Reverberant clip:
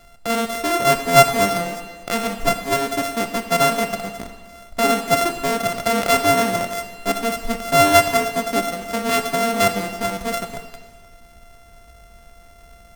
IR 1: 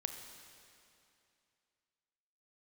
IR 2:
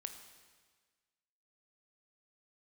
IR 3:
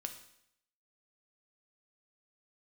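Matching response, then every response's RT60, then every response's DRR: 2; 2.6, 1.5, 0.75 s; 5.5, 6.5, 5.5 dB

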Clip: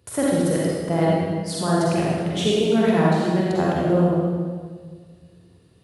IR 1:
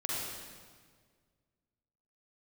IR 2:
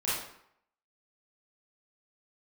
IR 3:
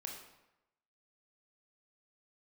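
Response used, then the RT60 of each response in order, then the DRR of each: 1; 1.7, 0.70, 0.90 s; -6.0, -10.0, 0.0 dB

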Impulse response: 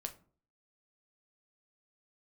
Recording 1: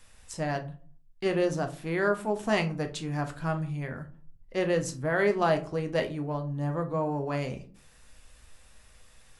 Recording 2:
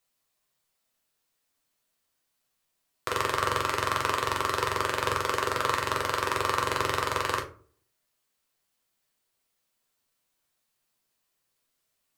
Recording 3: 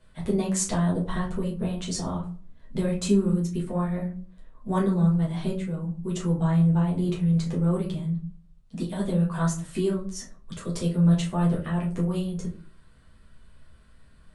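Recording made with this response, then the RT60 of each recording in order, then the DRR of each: 1; not exponential, not exponential, not exponential; 5.0, 0.5, -5.0 dB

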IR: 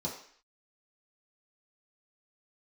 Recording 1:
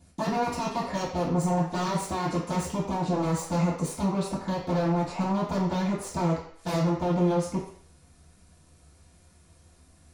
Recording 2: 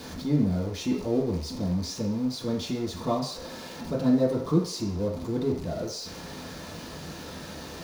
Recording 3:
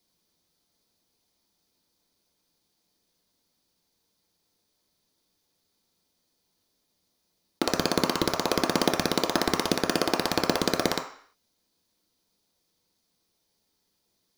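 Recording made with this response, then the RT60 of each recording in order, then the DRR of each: 2; 0.55, 0.55, 0.55 s; -14.5, -5.5, 1.0 dB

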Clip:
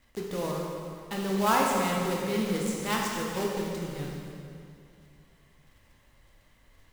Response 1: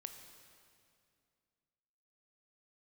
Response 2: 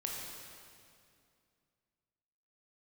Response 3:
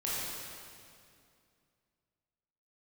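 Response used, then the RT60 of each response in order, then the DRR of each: 2; 2.4, 2.4, 2.4 s; 6.0, -2.0, -8.5 dB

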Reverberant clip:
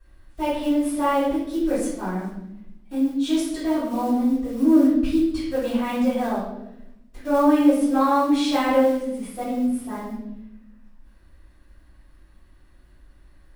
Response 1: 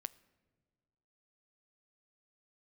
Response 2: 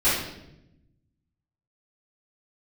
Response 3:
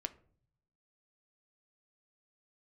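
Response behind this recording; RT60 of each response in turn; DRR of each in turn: 2; not exponential, 0.85 s, 0.55 s; 16.0, -13.5, 9.0 dB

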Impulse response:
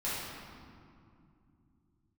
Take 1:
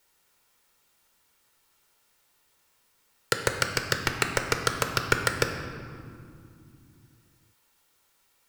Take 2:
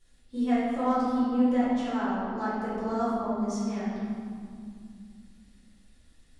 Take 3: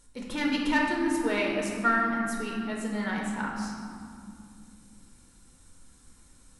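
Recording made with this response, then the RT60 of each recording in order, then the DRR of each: 2; 2.6, 2.5, 2.5 s; 4.5, -10.5, -2.0 dB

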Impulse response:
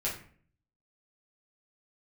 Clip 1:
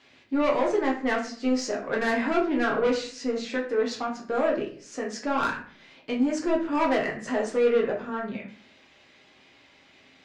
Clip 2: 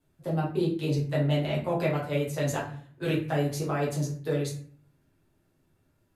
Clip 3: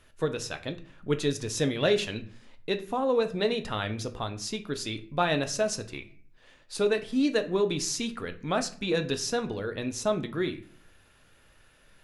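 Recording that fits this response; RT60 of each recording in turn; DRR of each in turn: 2; 0.50, 0.50, 0.50 s; -2.5, -6.5, 7.5 dB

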